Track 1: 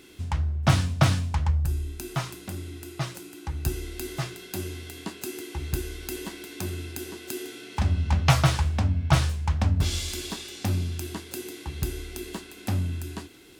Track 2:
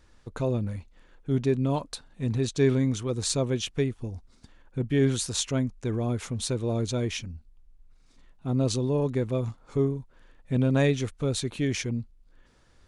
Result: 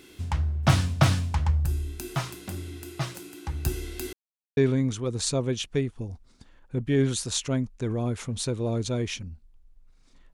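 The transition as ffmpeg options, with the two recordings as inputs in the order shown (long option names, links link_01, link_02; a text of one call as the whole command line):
ffmpeg -i cue0.wav -i cue1.wav -filter_complex "[0:a]apad=whole_dur=10.33,atrim=end=10.33,asplit=2[link_01][link_02];[link_01]atrim=end=4.13,asetpts=PTS-STARTPTS,afade=type=out:start_time=4.126:duration=0.004:curve=hsin[link_03];[link_02]atrim=start=4.13:end=4.57,asetpts=PTS-STARTPTS,volume=0[link_04];[1:a]atrim=start=2.6:end=8.36,asetpts=PTS-STARTPTS,afade=type=in:duration=0.004:curve=hsin[link_05];[link_03][link_04][link_05]concat=n=3:v=0:a=1" out.wav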